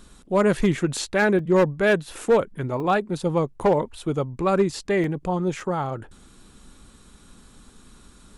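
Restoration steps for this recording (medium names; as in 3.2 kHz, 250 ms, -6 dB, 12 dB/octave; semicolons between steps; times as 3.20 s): clip repair -12 dBFS; interpolate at 0.97/1.39/2.80/5.04/5.60 s, 2 ms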